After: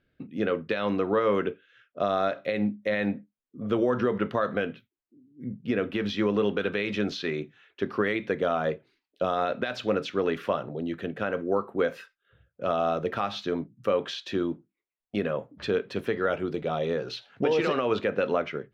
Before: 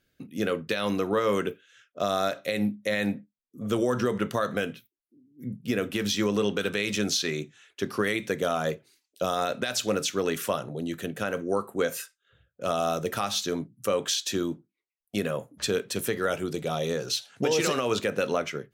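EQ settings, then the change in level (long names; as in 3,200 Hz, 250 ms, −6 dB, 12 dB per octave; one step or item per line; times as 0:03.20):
dynamic equaliser 130 Hz, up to −5 dB, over −43 dBFS, Q 1.1
high-frequency loss of the air 350 metres
+2.5 dB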